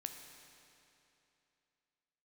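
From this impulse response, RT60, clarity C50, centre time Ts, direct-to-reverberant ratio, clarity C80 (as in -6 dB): 2.9 s, 6.0 dB, 54 ms, 4.5 dB, 6.5 dB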